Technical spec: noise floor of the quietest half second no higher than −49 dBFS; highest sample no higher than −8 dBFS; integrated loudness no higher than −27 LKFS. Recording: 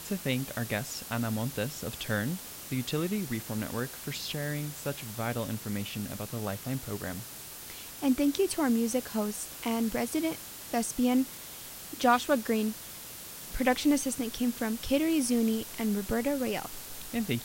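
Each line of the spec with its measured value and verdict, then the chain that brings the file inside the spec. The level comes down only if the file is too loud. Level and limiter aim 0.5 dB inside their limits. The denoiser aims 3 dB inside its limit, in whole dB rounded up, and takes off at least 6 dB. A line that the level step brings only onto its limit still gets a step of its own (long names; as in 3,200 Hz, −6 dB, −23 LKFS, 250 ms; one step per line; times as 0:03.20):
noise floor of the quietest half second −44 dBFS: out of spec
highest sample −11.0 dBFS: in spec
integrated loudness −31.5 LKFS: in spec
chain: broadband denoise 8 dB, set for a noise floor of −44 dBFS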